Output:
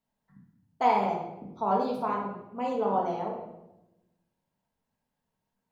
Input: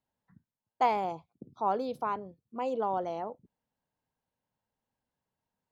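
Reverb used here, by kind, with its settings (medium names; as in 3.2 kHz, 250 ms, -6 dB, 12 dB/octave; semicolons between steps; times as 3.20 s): simulated room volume 350 m³, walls mixed, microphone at 1.6 m; trim -1 dB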